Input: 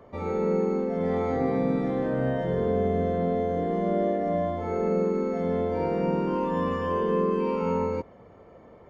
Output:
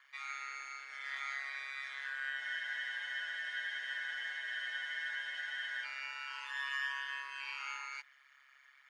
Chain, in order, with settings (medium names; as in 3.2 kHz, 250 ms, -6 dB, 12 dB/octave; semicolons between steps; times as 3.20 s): Chebyshev high-pass 1.6 kHz, order 4; ring modulator 68 Hz; spectral freeze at 2.42 s, 3.43 s; trim +8.5 dB